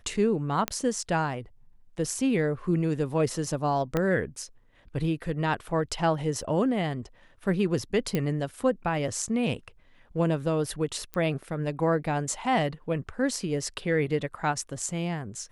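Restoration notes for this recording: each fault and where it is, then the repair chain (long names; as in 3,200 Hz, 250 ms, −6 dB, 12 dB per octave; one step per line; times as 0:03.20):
0:00.68: click −10 dBFS
0:03.97: click −13 dBFS
0:06.42–0:06.43: drop-out 5.9 ms
0:08.15: click −14 dBFS
0:11.14: click −18 dBFS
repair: click removal
repair the gap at 0:06.42, 5.9 ms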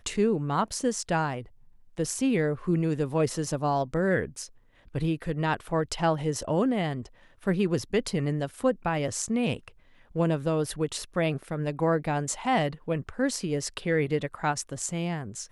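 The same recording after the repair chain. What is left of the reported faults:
0:03.97: click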